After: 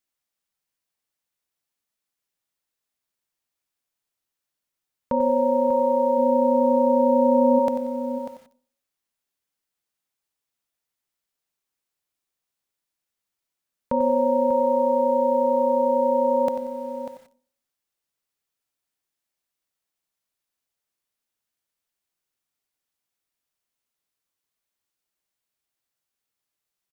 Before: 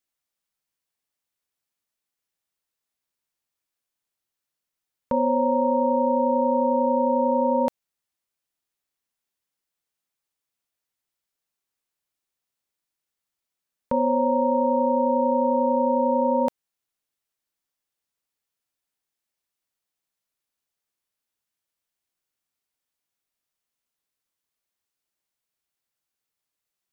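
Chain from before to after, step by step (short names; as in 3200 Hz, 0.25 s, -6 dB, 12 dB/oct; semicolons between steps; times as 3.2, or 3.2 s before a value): 6.17–7.58 bell 88 Hz -> 170 Hz +13.5 dB 1.6 oct; echo 0.593 s -11 dB; reverb RT60 0.50 s, pre-delay 30 ms, DRR 15.5 dB; lo-fi delay 92 ms, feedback 35%, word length 8-bit, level -10.5 dB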